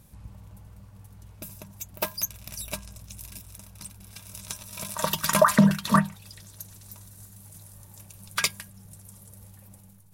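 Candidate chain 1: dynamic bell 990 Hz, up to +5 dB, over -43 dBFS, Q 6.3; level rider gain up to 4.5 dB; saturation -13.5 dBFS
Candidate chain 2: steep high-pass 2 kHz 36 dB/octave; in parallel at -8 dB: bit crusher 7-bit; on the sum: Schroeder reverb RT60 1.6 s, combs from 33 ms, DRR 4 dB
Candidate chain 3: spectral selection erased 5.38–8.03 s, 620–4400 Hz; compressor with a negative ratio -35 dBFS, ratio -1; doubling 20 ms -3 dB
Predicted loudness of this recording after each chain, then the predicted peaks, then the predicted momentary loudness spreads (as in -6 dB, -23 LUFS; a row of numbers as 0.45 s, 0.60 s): -27.5 LUFS, -29.5 LUFS, -34.0 LUFS; -13.5 dBFS, -5.5 dBFS, -8.5 dBFS; 23 LU, 22 LU, 10 LU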